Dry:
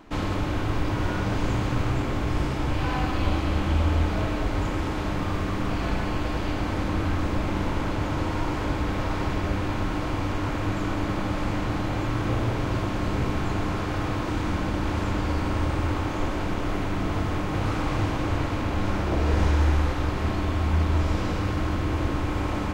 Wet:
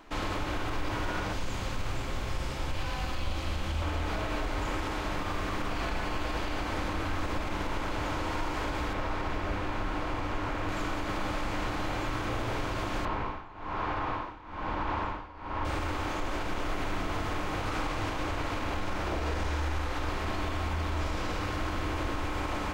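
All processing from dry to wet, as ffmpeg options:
-filter_complex "[0:a]asettb=1/sr,asplit=3[a][b][c];[a]atrim=end=1.324[d];[b]atrim=start=1.32:end=3.82,asetpts=PTS-STARTPTS,afade=t=in:d=0.004:c=qsin,afade=t=out:st=2.496:d=0.004:c=qsin,bandreject=f=60:t=h:w=6,bandreject=f=120:t=h:w=6,bandreject=f=180:t=h:w=6,bandreject=f=240:t=h:w=6,bandreject=f=300:t=h:w=6,bandreject=f=360:t=h:w=6,bandreject=f=420:t=h:w=6,bandreject=f=480:t=h:w=6,acrossover=split=240|3000[e][f][g];[f]acompressor=threshold=-37dB:ratio=2.5:attack=3.2:release=140:knee=2.83:detection=peak[h];[e][h][g]amix=inputs=3:normalize=0,aeval=exprs='val(0)+0.00562*sin(2*PI*530*n/s)':c=same[i];[c]atrim=start=3.816[j];[d][i]acrossfade=d=0.004:c1=hsin:c2=qsin[k];[k][j]acrossfade=d=0.004:c1=qsin:c2=hsin,asettb=1/sr,asplit=3[l][m][n];[l]atrim=end=8.934[o];[m]atrim=start=8.93:end=10.69,asetpts=PTS-STARTPTS,afade=t=in:d=0.004:c=qsin,afade=t=out:st=1.756:d=0.004:c=qsin,highshelf=f=4k:g=-9,volume=19dB,asoftclip=hard,volume=-19dB[p];[n]atrim=start=10.686[q];[o][p]acrossfade=d=0.004:c1=hsin:c2=qsin[r];[r][q]acrossfade=d=0.004:c1=qsin:c2=hsin,asettb=1/sr,asplit=3[s][t][u];[s]atrim=end=13.054[v];[t]atrim=start=13.05:end=15.65,asetpts=PTS-STARTPTS,afade=t=in:d=0.004:c=qsin,afade=t=out:st=2.596:d=0.004:c=qsin,lowpass=3.1k,equalizer=f=970:t=o:w=0.65:g=8.5,tremolo=f=1.1:d=0.9[w];[u]atrim=start=15.646[x];[v][w]acrossfade=d=0.004:c1=hsin:c2=qsin[y];[y][x]acrossfade=d=0.004:c1=qsin:c2=hsin,equalizer=f=140:t=o:w=2.8:g=-10.5,alimiter=limit=-22.5dB:level=0:latency=1"

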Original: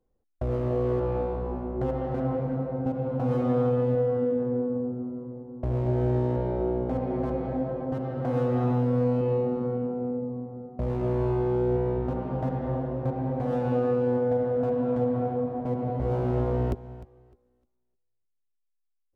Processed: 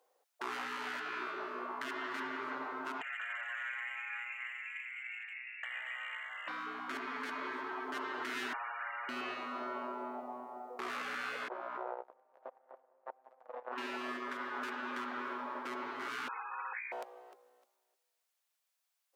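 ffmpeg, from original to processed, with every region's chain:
-filter_complex "[0:a]asettb=1/sr,asplit=3[a][b][c];[a]atrim=end=3.014[d];[b]atrim=start=3.01:end=6.48,asetpts=PTS-STARTPTS,afade=t=in:d=0.004:c=qsin,afade=t=out:st=3.466:d=0.004:c=qsin,bandreject=f=1.8k:w=20,lowpass=f=2.4k:t=q:w=0.5098,lowpass=f=2.4k:t=q:w=0.6013,lowpass=f=2.4k:t=q:w=0.9,lowpass=f=2.4k:t=q:w=2.563,afreqshift=-2800,acompressor=threshold=-32dB:ratio=3:attack=3.2:release=140:knee=1:detection=peak[e];[c]atrim=start=6.476[f];[d][e]acrossfade=d=0.004:c1=hsin:c2=qsin[g];[g][f]acrossfade=d=0.004:c1=qsin:c2=hsin,asettb=1/sr,asplit=3[h][i][j];[h]atrim=end=8.534[k];[i]atrim=start=8.53:end=9.09,asetpts=PTS-STARTPTS,afade=t=in:d=0.004:c=qsin,afade=t=out:st=0.556:d=0.004:c=qsin,highpass=130,lowpass=f=2.4k:t=q:w=0.5098,lowpass=f=2.4k:t=q:w=0.6013,lowpass=f=2.4k:t=q:w=0.9,lowpass=f=2.4k:t=q:w=2.563,afreqshift=-2800[l];[j]atrim=start=9.086[m];[k][l]acrossfade=d=0.004:c1=hsin:c2=qsin[n];[n][m]acrossfade=d=0.004:c1=qsin:c2=hsin,asettb=1/sr,asplit=3[o][p][q];[o]atrim=end=11.484[r];[p]atrim=start=11.48:end=13.78,asetpts=PTS-STARTPTS,afade=t=in:d=0.004:c=qsin,afade=t=out:st=2.296:d=0.004:c=qsin,aeval=exprs='if(lt(val(0),0),0.447*val(0),val(0))':c=same,lowpass=1.7k,agate=range=-40dB:threshold=-26dB:ratio=16:release=100:detection=peak[s];[q]atrim=start=13.776[t];[r][s]acrossfade=d=0.004:c1=hsin:c2=qsin[u];[u][t]acrossfade=d=0.004:c1=qsin:c2=hsin,asettb=1/sr,asplit=3[v][w][x];[v]atrim=end=16.284[y];[w]atrim=start=16.28:end=16.92,asetpts=PTS-STARTPTS,afade=t=in:d=0.004:c=qsin,afade=t=out:st=0.636:d=0.004:c=qsin,agate=range=-33dB:threshold=-33dB:ratio=3:release=100:detection=peak,lowpass=f=2.1k:t=q:w=0.5098,lowpass=f=2.1k:t=q:w=0.6013,lowpass=f=2.1k:t=q:w=0.9,lowpass=f=2.1k:t=q:w=2.563,afreqshift=-2500,asuperstop=centerf=640:order=20:qfactor=3.1[z];[x]atrim=start=16.916[aa];[y][z]acrossfade=d=0.004:c1=hsin:c2=qsin[ab];[ab][aa]acrossfade=d=0.004:c1=qsin:c2=hsin,highpass=f=600:w=0.5412,highpass=f=600:w=1.3066,afftfilt=real='re*lt(hypot(re,im),0.0178)':imag='im*lt(hypot(re,im),0.0178)':win_size=1024:overlap=0.75,volume=12.5dB"

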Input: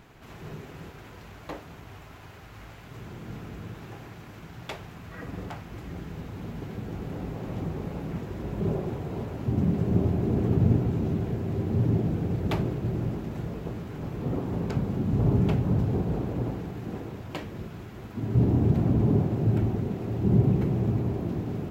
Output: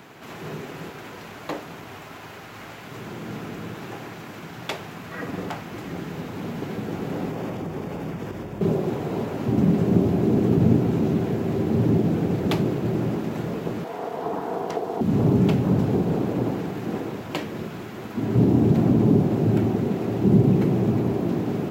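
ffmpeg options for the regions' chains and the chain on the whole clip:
-filter_complex "[0:a]asettb=1/sr,asplit=3[a][b][c];[a]atrim=end=7.314[d];[b]atrim=start=7.31:end=8.61,asetpts=PTS-STARTPTS,afade=t=in:d=0.004:c=qsin,afade=t=out:st=1.296:d=0.004:c=qsin,asubboost=boost=6.5:cutoff=120,acompressor=threshold=-31dB:ratio=6:attack=3.2:release=140:knee=1:detection=peak,bandreject=f=4k:w=11[e];[c]atrim=start=8.606[f];[d][e]acrossfade=d=0.004:c1=hsin:c2=qsin[g];[g][f]acrossfade=d=0.004:c1=qsin:c2=hsin,asettb=1/sr,asplit=3[h][i][j];[h]atrim=end=13.844[k];[i]atrim=start=13.84:end=15.01,asetpts=PTS-STARTPTS,afade=t=in:d=0.004:c=qsin,afade=t=out:st=1.166:d=0.004:c=qsin,equalizer=f=220:t=o:w=1:g=-4,aeval=exprs='val(0)*sin(2*PI*570*n/s)':c=same[l];[j]atrim=start=15.006[m];[k][l]acrossfade=d=0.004:c1=hsin:c2=qsin[n];[n][m]acrossfade=d=0.004:c1=qsin:c2=hsin,highpass=180,acrossover=split=390|3000[o][p][q];[p]acompressor=threshold=-37dB:ratio=6[r];[o][r][q]amix=inputs=3:normalize=0,volume=9dB"

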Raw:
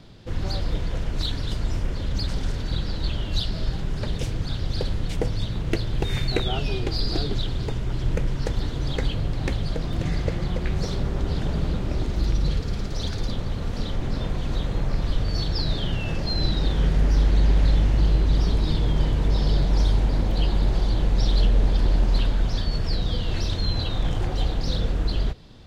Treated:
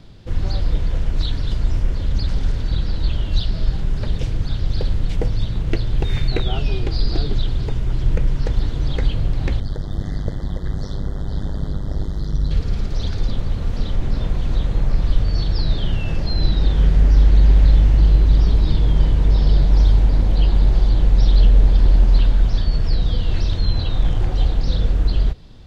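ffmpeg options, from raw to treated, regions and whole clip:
-filter_complex "[0:a]asettb=1/sr,asplit=3[a][b][c];[a]atrim=end=9.604[d];[b]atrim=start=9.6:end=12.51,asetpts=PTS-STARTPTS,afade=t=in:d=0.004:c=qsin,afade=t=out:st=2.906:d=0.004:c=qsin,tremolo=f=100:d=0.947,asuperstop=centerf=2500:order=12:qfactor=2.4[e];[c]atrim=start=12.506[f];[d][e]acrossfade=d=0.004:c1=hsin:c2=qsin[g];[g][f]acrossfade=d=0.004:c1=qsin:c2=hsin,acrossover=split=5800[h][i];[i]acompressor=threshold=-54dB:ratio=4:attack=1:release=60[j];[h][j]amix=inputs=2:normalize=0,lowshelf=f=92:g=9"

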